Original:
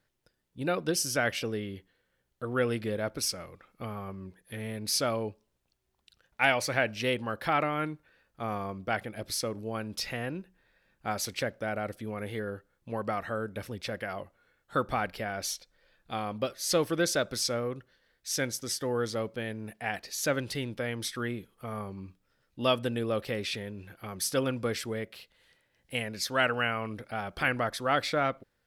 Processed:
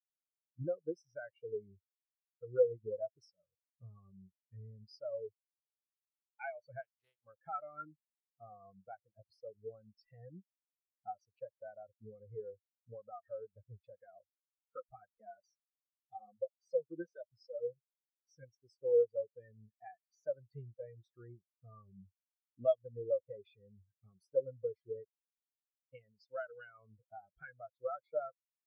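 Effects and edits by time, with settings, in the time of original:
6.81–7.24 s: spectral contrast reduction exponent 0.19
14.22–18.43 s: flange 1.3 Hz, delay 0.4 ms, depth 6.5 ms, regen -6%
whole clip: dynamic bell 250 Hz, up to -7 dB, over -49 dBFS, Q 2.4; compression 2.5:1, threshold -38 dBFS; spectral contrast expander 4:1; trim +2 dB

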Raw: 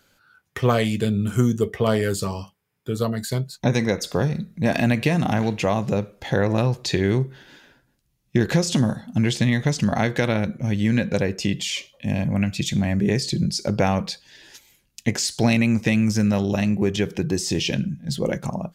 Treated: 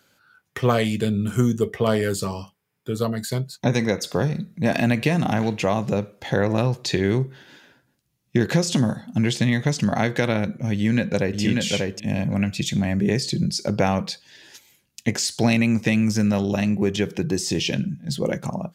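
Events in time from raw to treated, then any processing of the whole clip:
10.74–11.40 s: echo throw 590 ms, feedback 10%, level -2.5 dB
whole clip: high-pass 89 Hz

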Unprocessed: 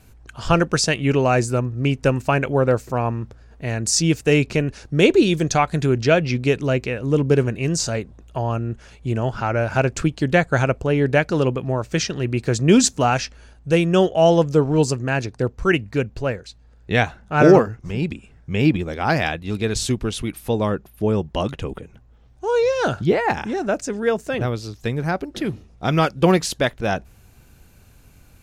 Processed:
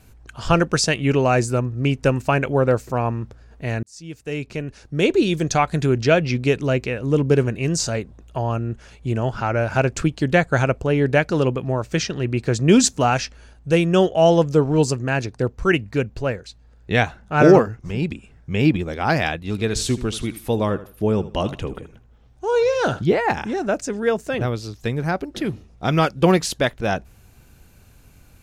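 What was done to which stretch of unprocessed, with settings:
3.83–5.68 s: fade in
11.96–12.62 s: treble shelf 7.2 kHz -5.5 dB
19.50–22.99 s: feedback delay 79 ms, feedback 27%, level -15.5 dB

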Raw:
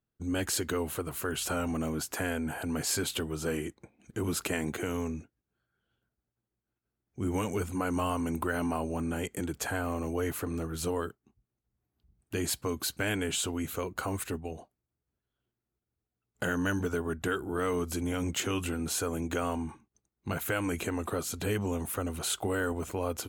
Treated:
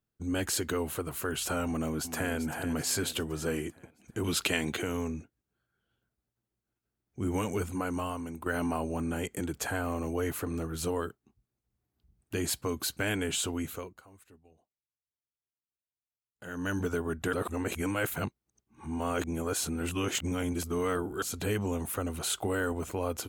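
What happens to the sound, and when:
1.65–2.34 s: echo throw 390 ms, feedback 50%, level -10.5 dB
4.24–4.82 s: peaking EQ 3.4 kHz +10.5 dB 1.2 oct
7.63–8.46 s: fade out, to -11 dB
13.59–16.81 s: dip -23 dB, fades 0.42 s
17.33–21.22 s: reverse

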